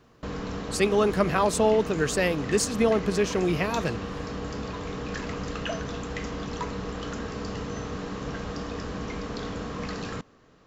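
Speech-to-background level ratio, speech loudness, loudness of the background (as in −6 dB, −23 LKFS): 9.0 dB, −25.0 LKFS, −34.0 LKFS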